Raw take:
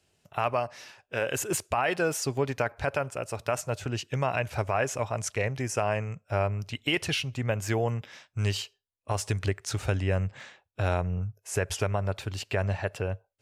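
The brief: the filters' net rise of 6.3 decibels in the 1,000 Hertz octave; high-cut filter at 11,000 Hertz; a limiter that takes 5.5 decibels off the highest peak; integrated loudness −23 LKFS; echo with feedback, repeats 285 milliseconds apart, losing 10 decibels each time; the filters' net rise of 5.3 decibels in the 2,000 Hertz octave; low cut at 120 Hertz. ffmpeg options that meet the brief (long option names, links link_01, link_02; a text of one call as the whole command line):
ffmpeg -i in.wav -af "highpass=120,lowpass=11000,equalizer=frequency=1000:width_type=o:gain=7.5,equalizer=frequency=2000:width_type=o:gain=4.5,alimiter=limit=-12.5dB:level=0:latency=1,aecho=1:1:285|570|855|1140:0.316|0.101|0.0324|0.0104,volume=6dB" out.wav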